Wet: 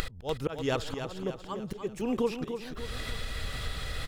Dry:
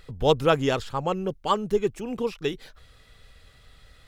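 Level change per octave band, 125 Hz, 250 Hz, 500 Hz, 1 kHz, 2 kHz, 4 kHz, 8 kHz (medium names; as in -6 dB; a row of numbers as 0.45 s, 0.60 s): -5.5 dB, -4.0 dB, -8.5 dB, -11.5 dB, -4.0 dB, -4.5 dB, -0.5 dB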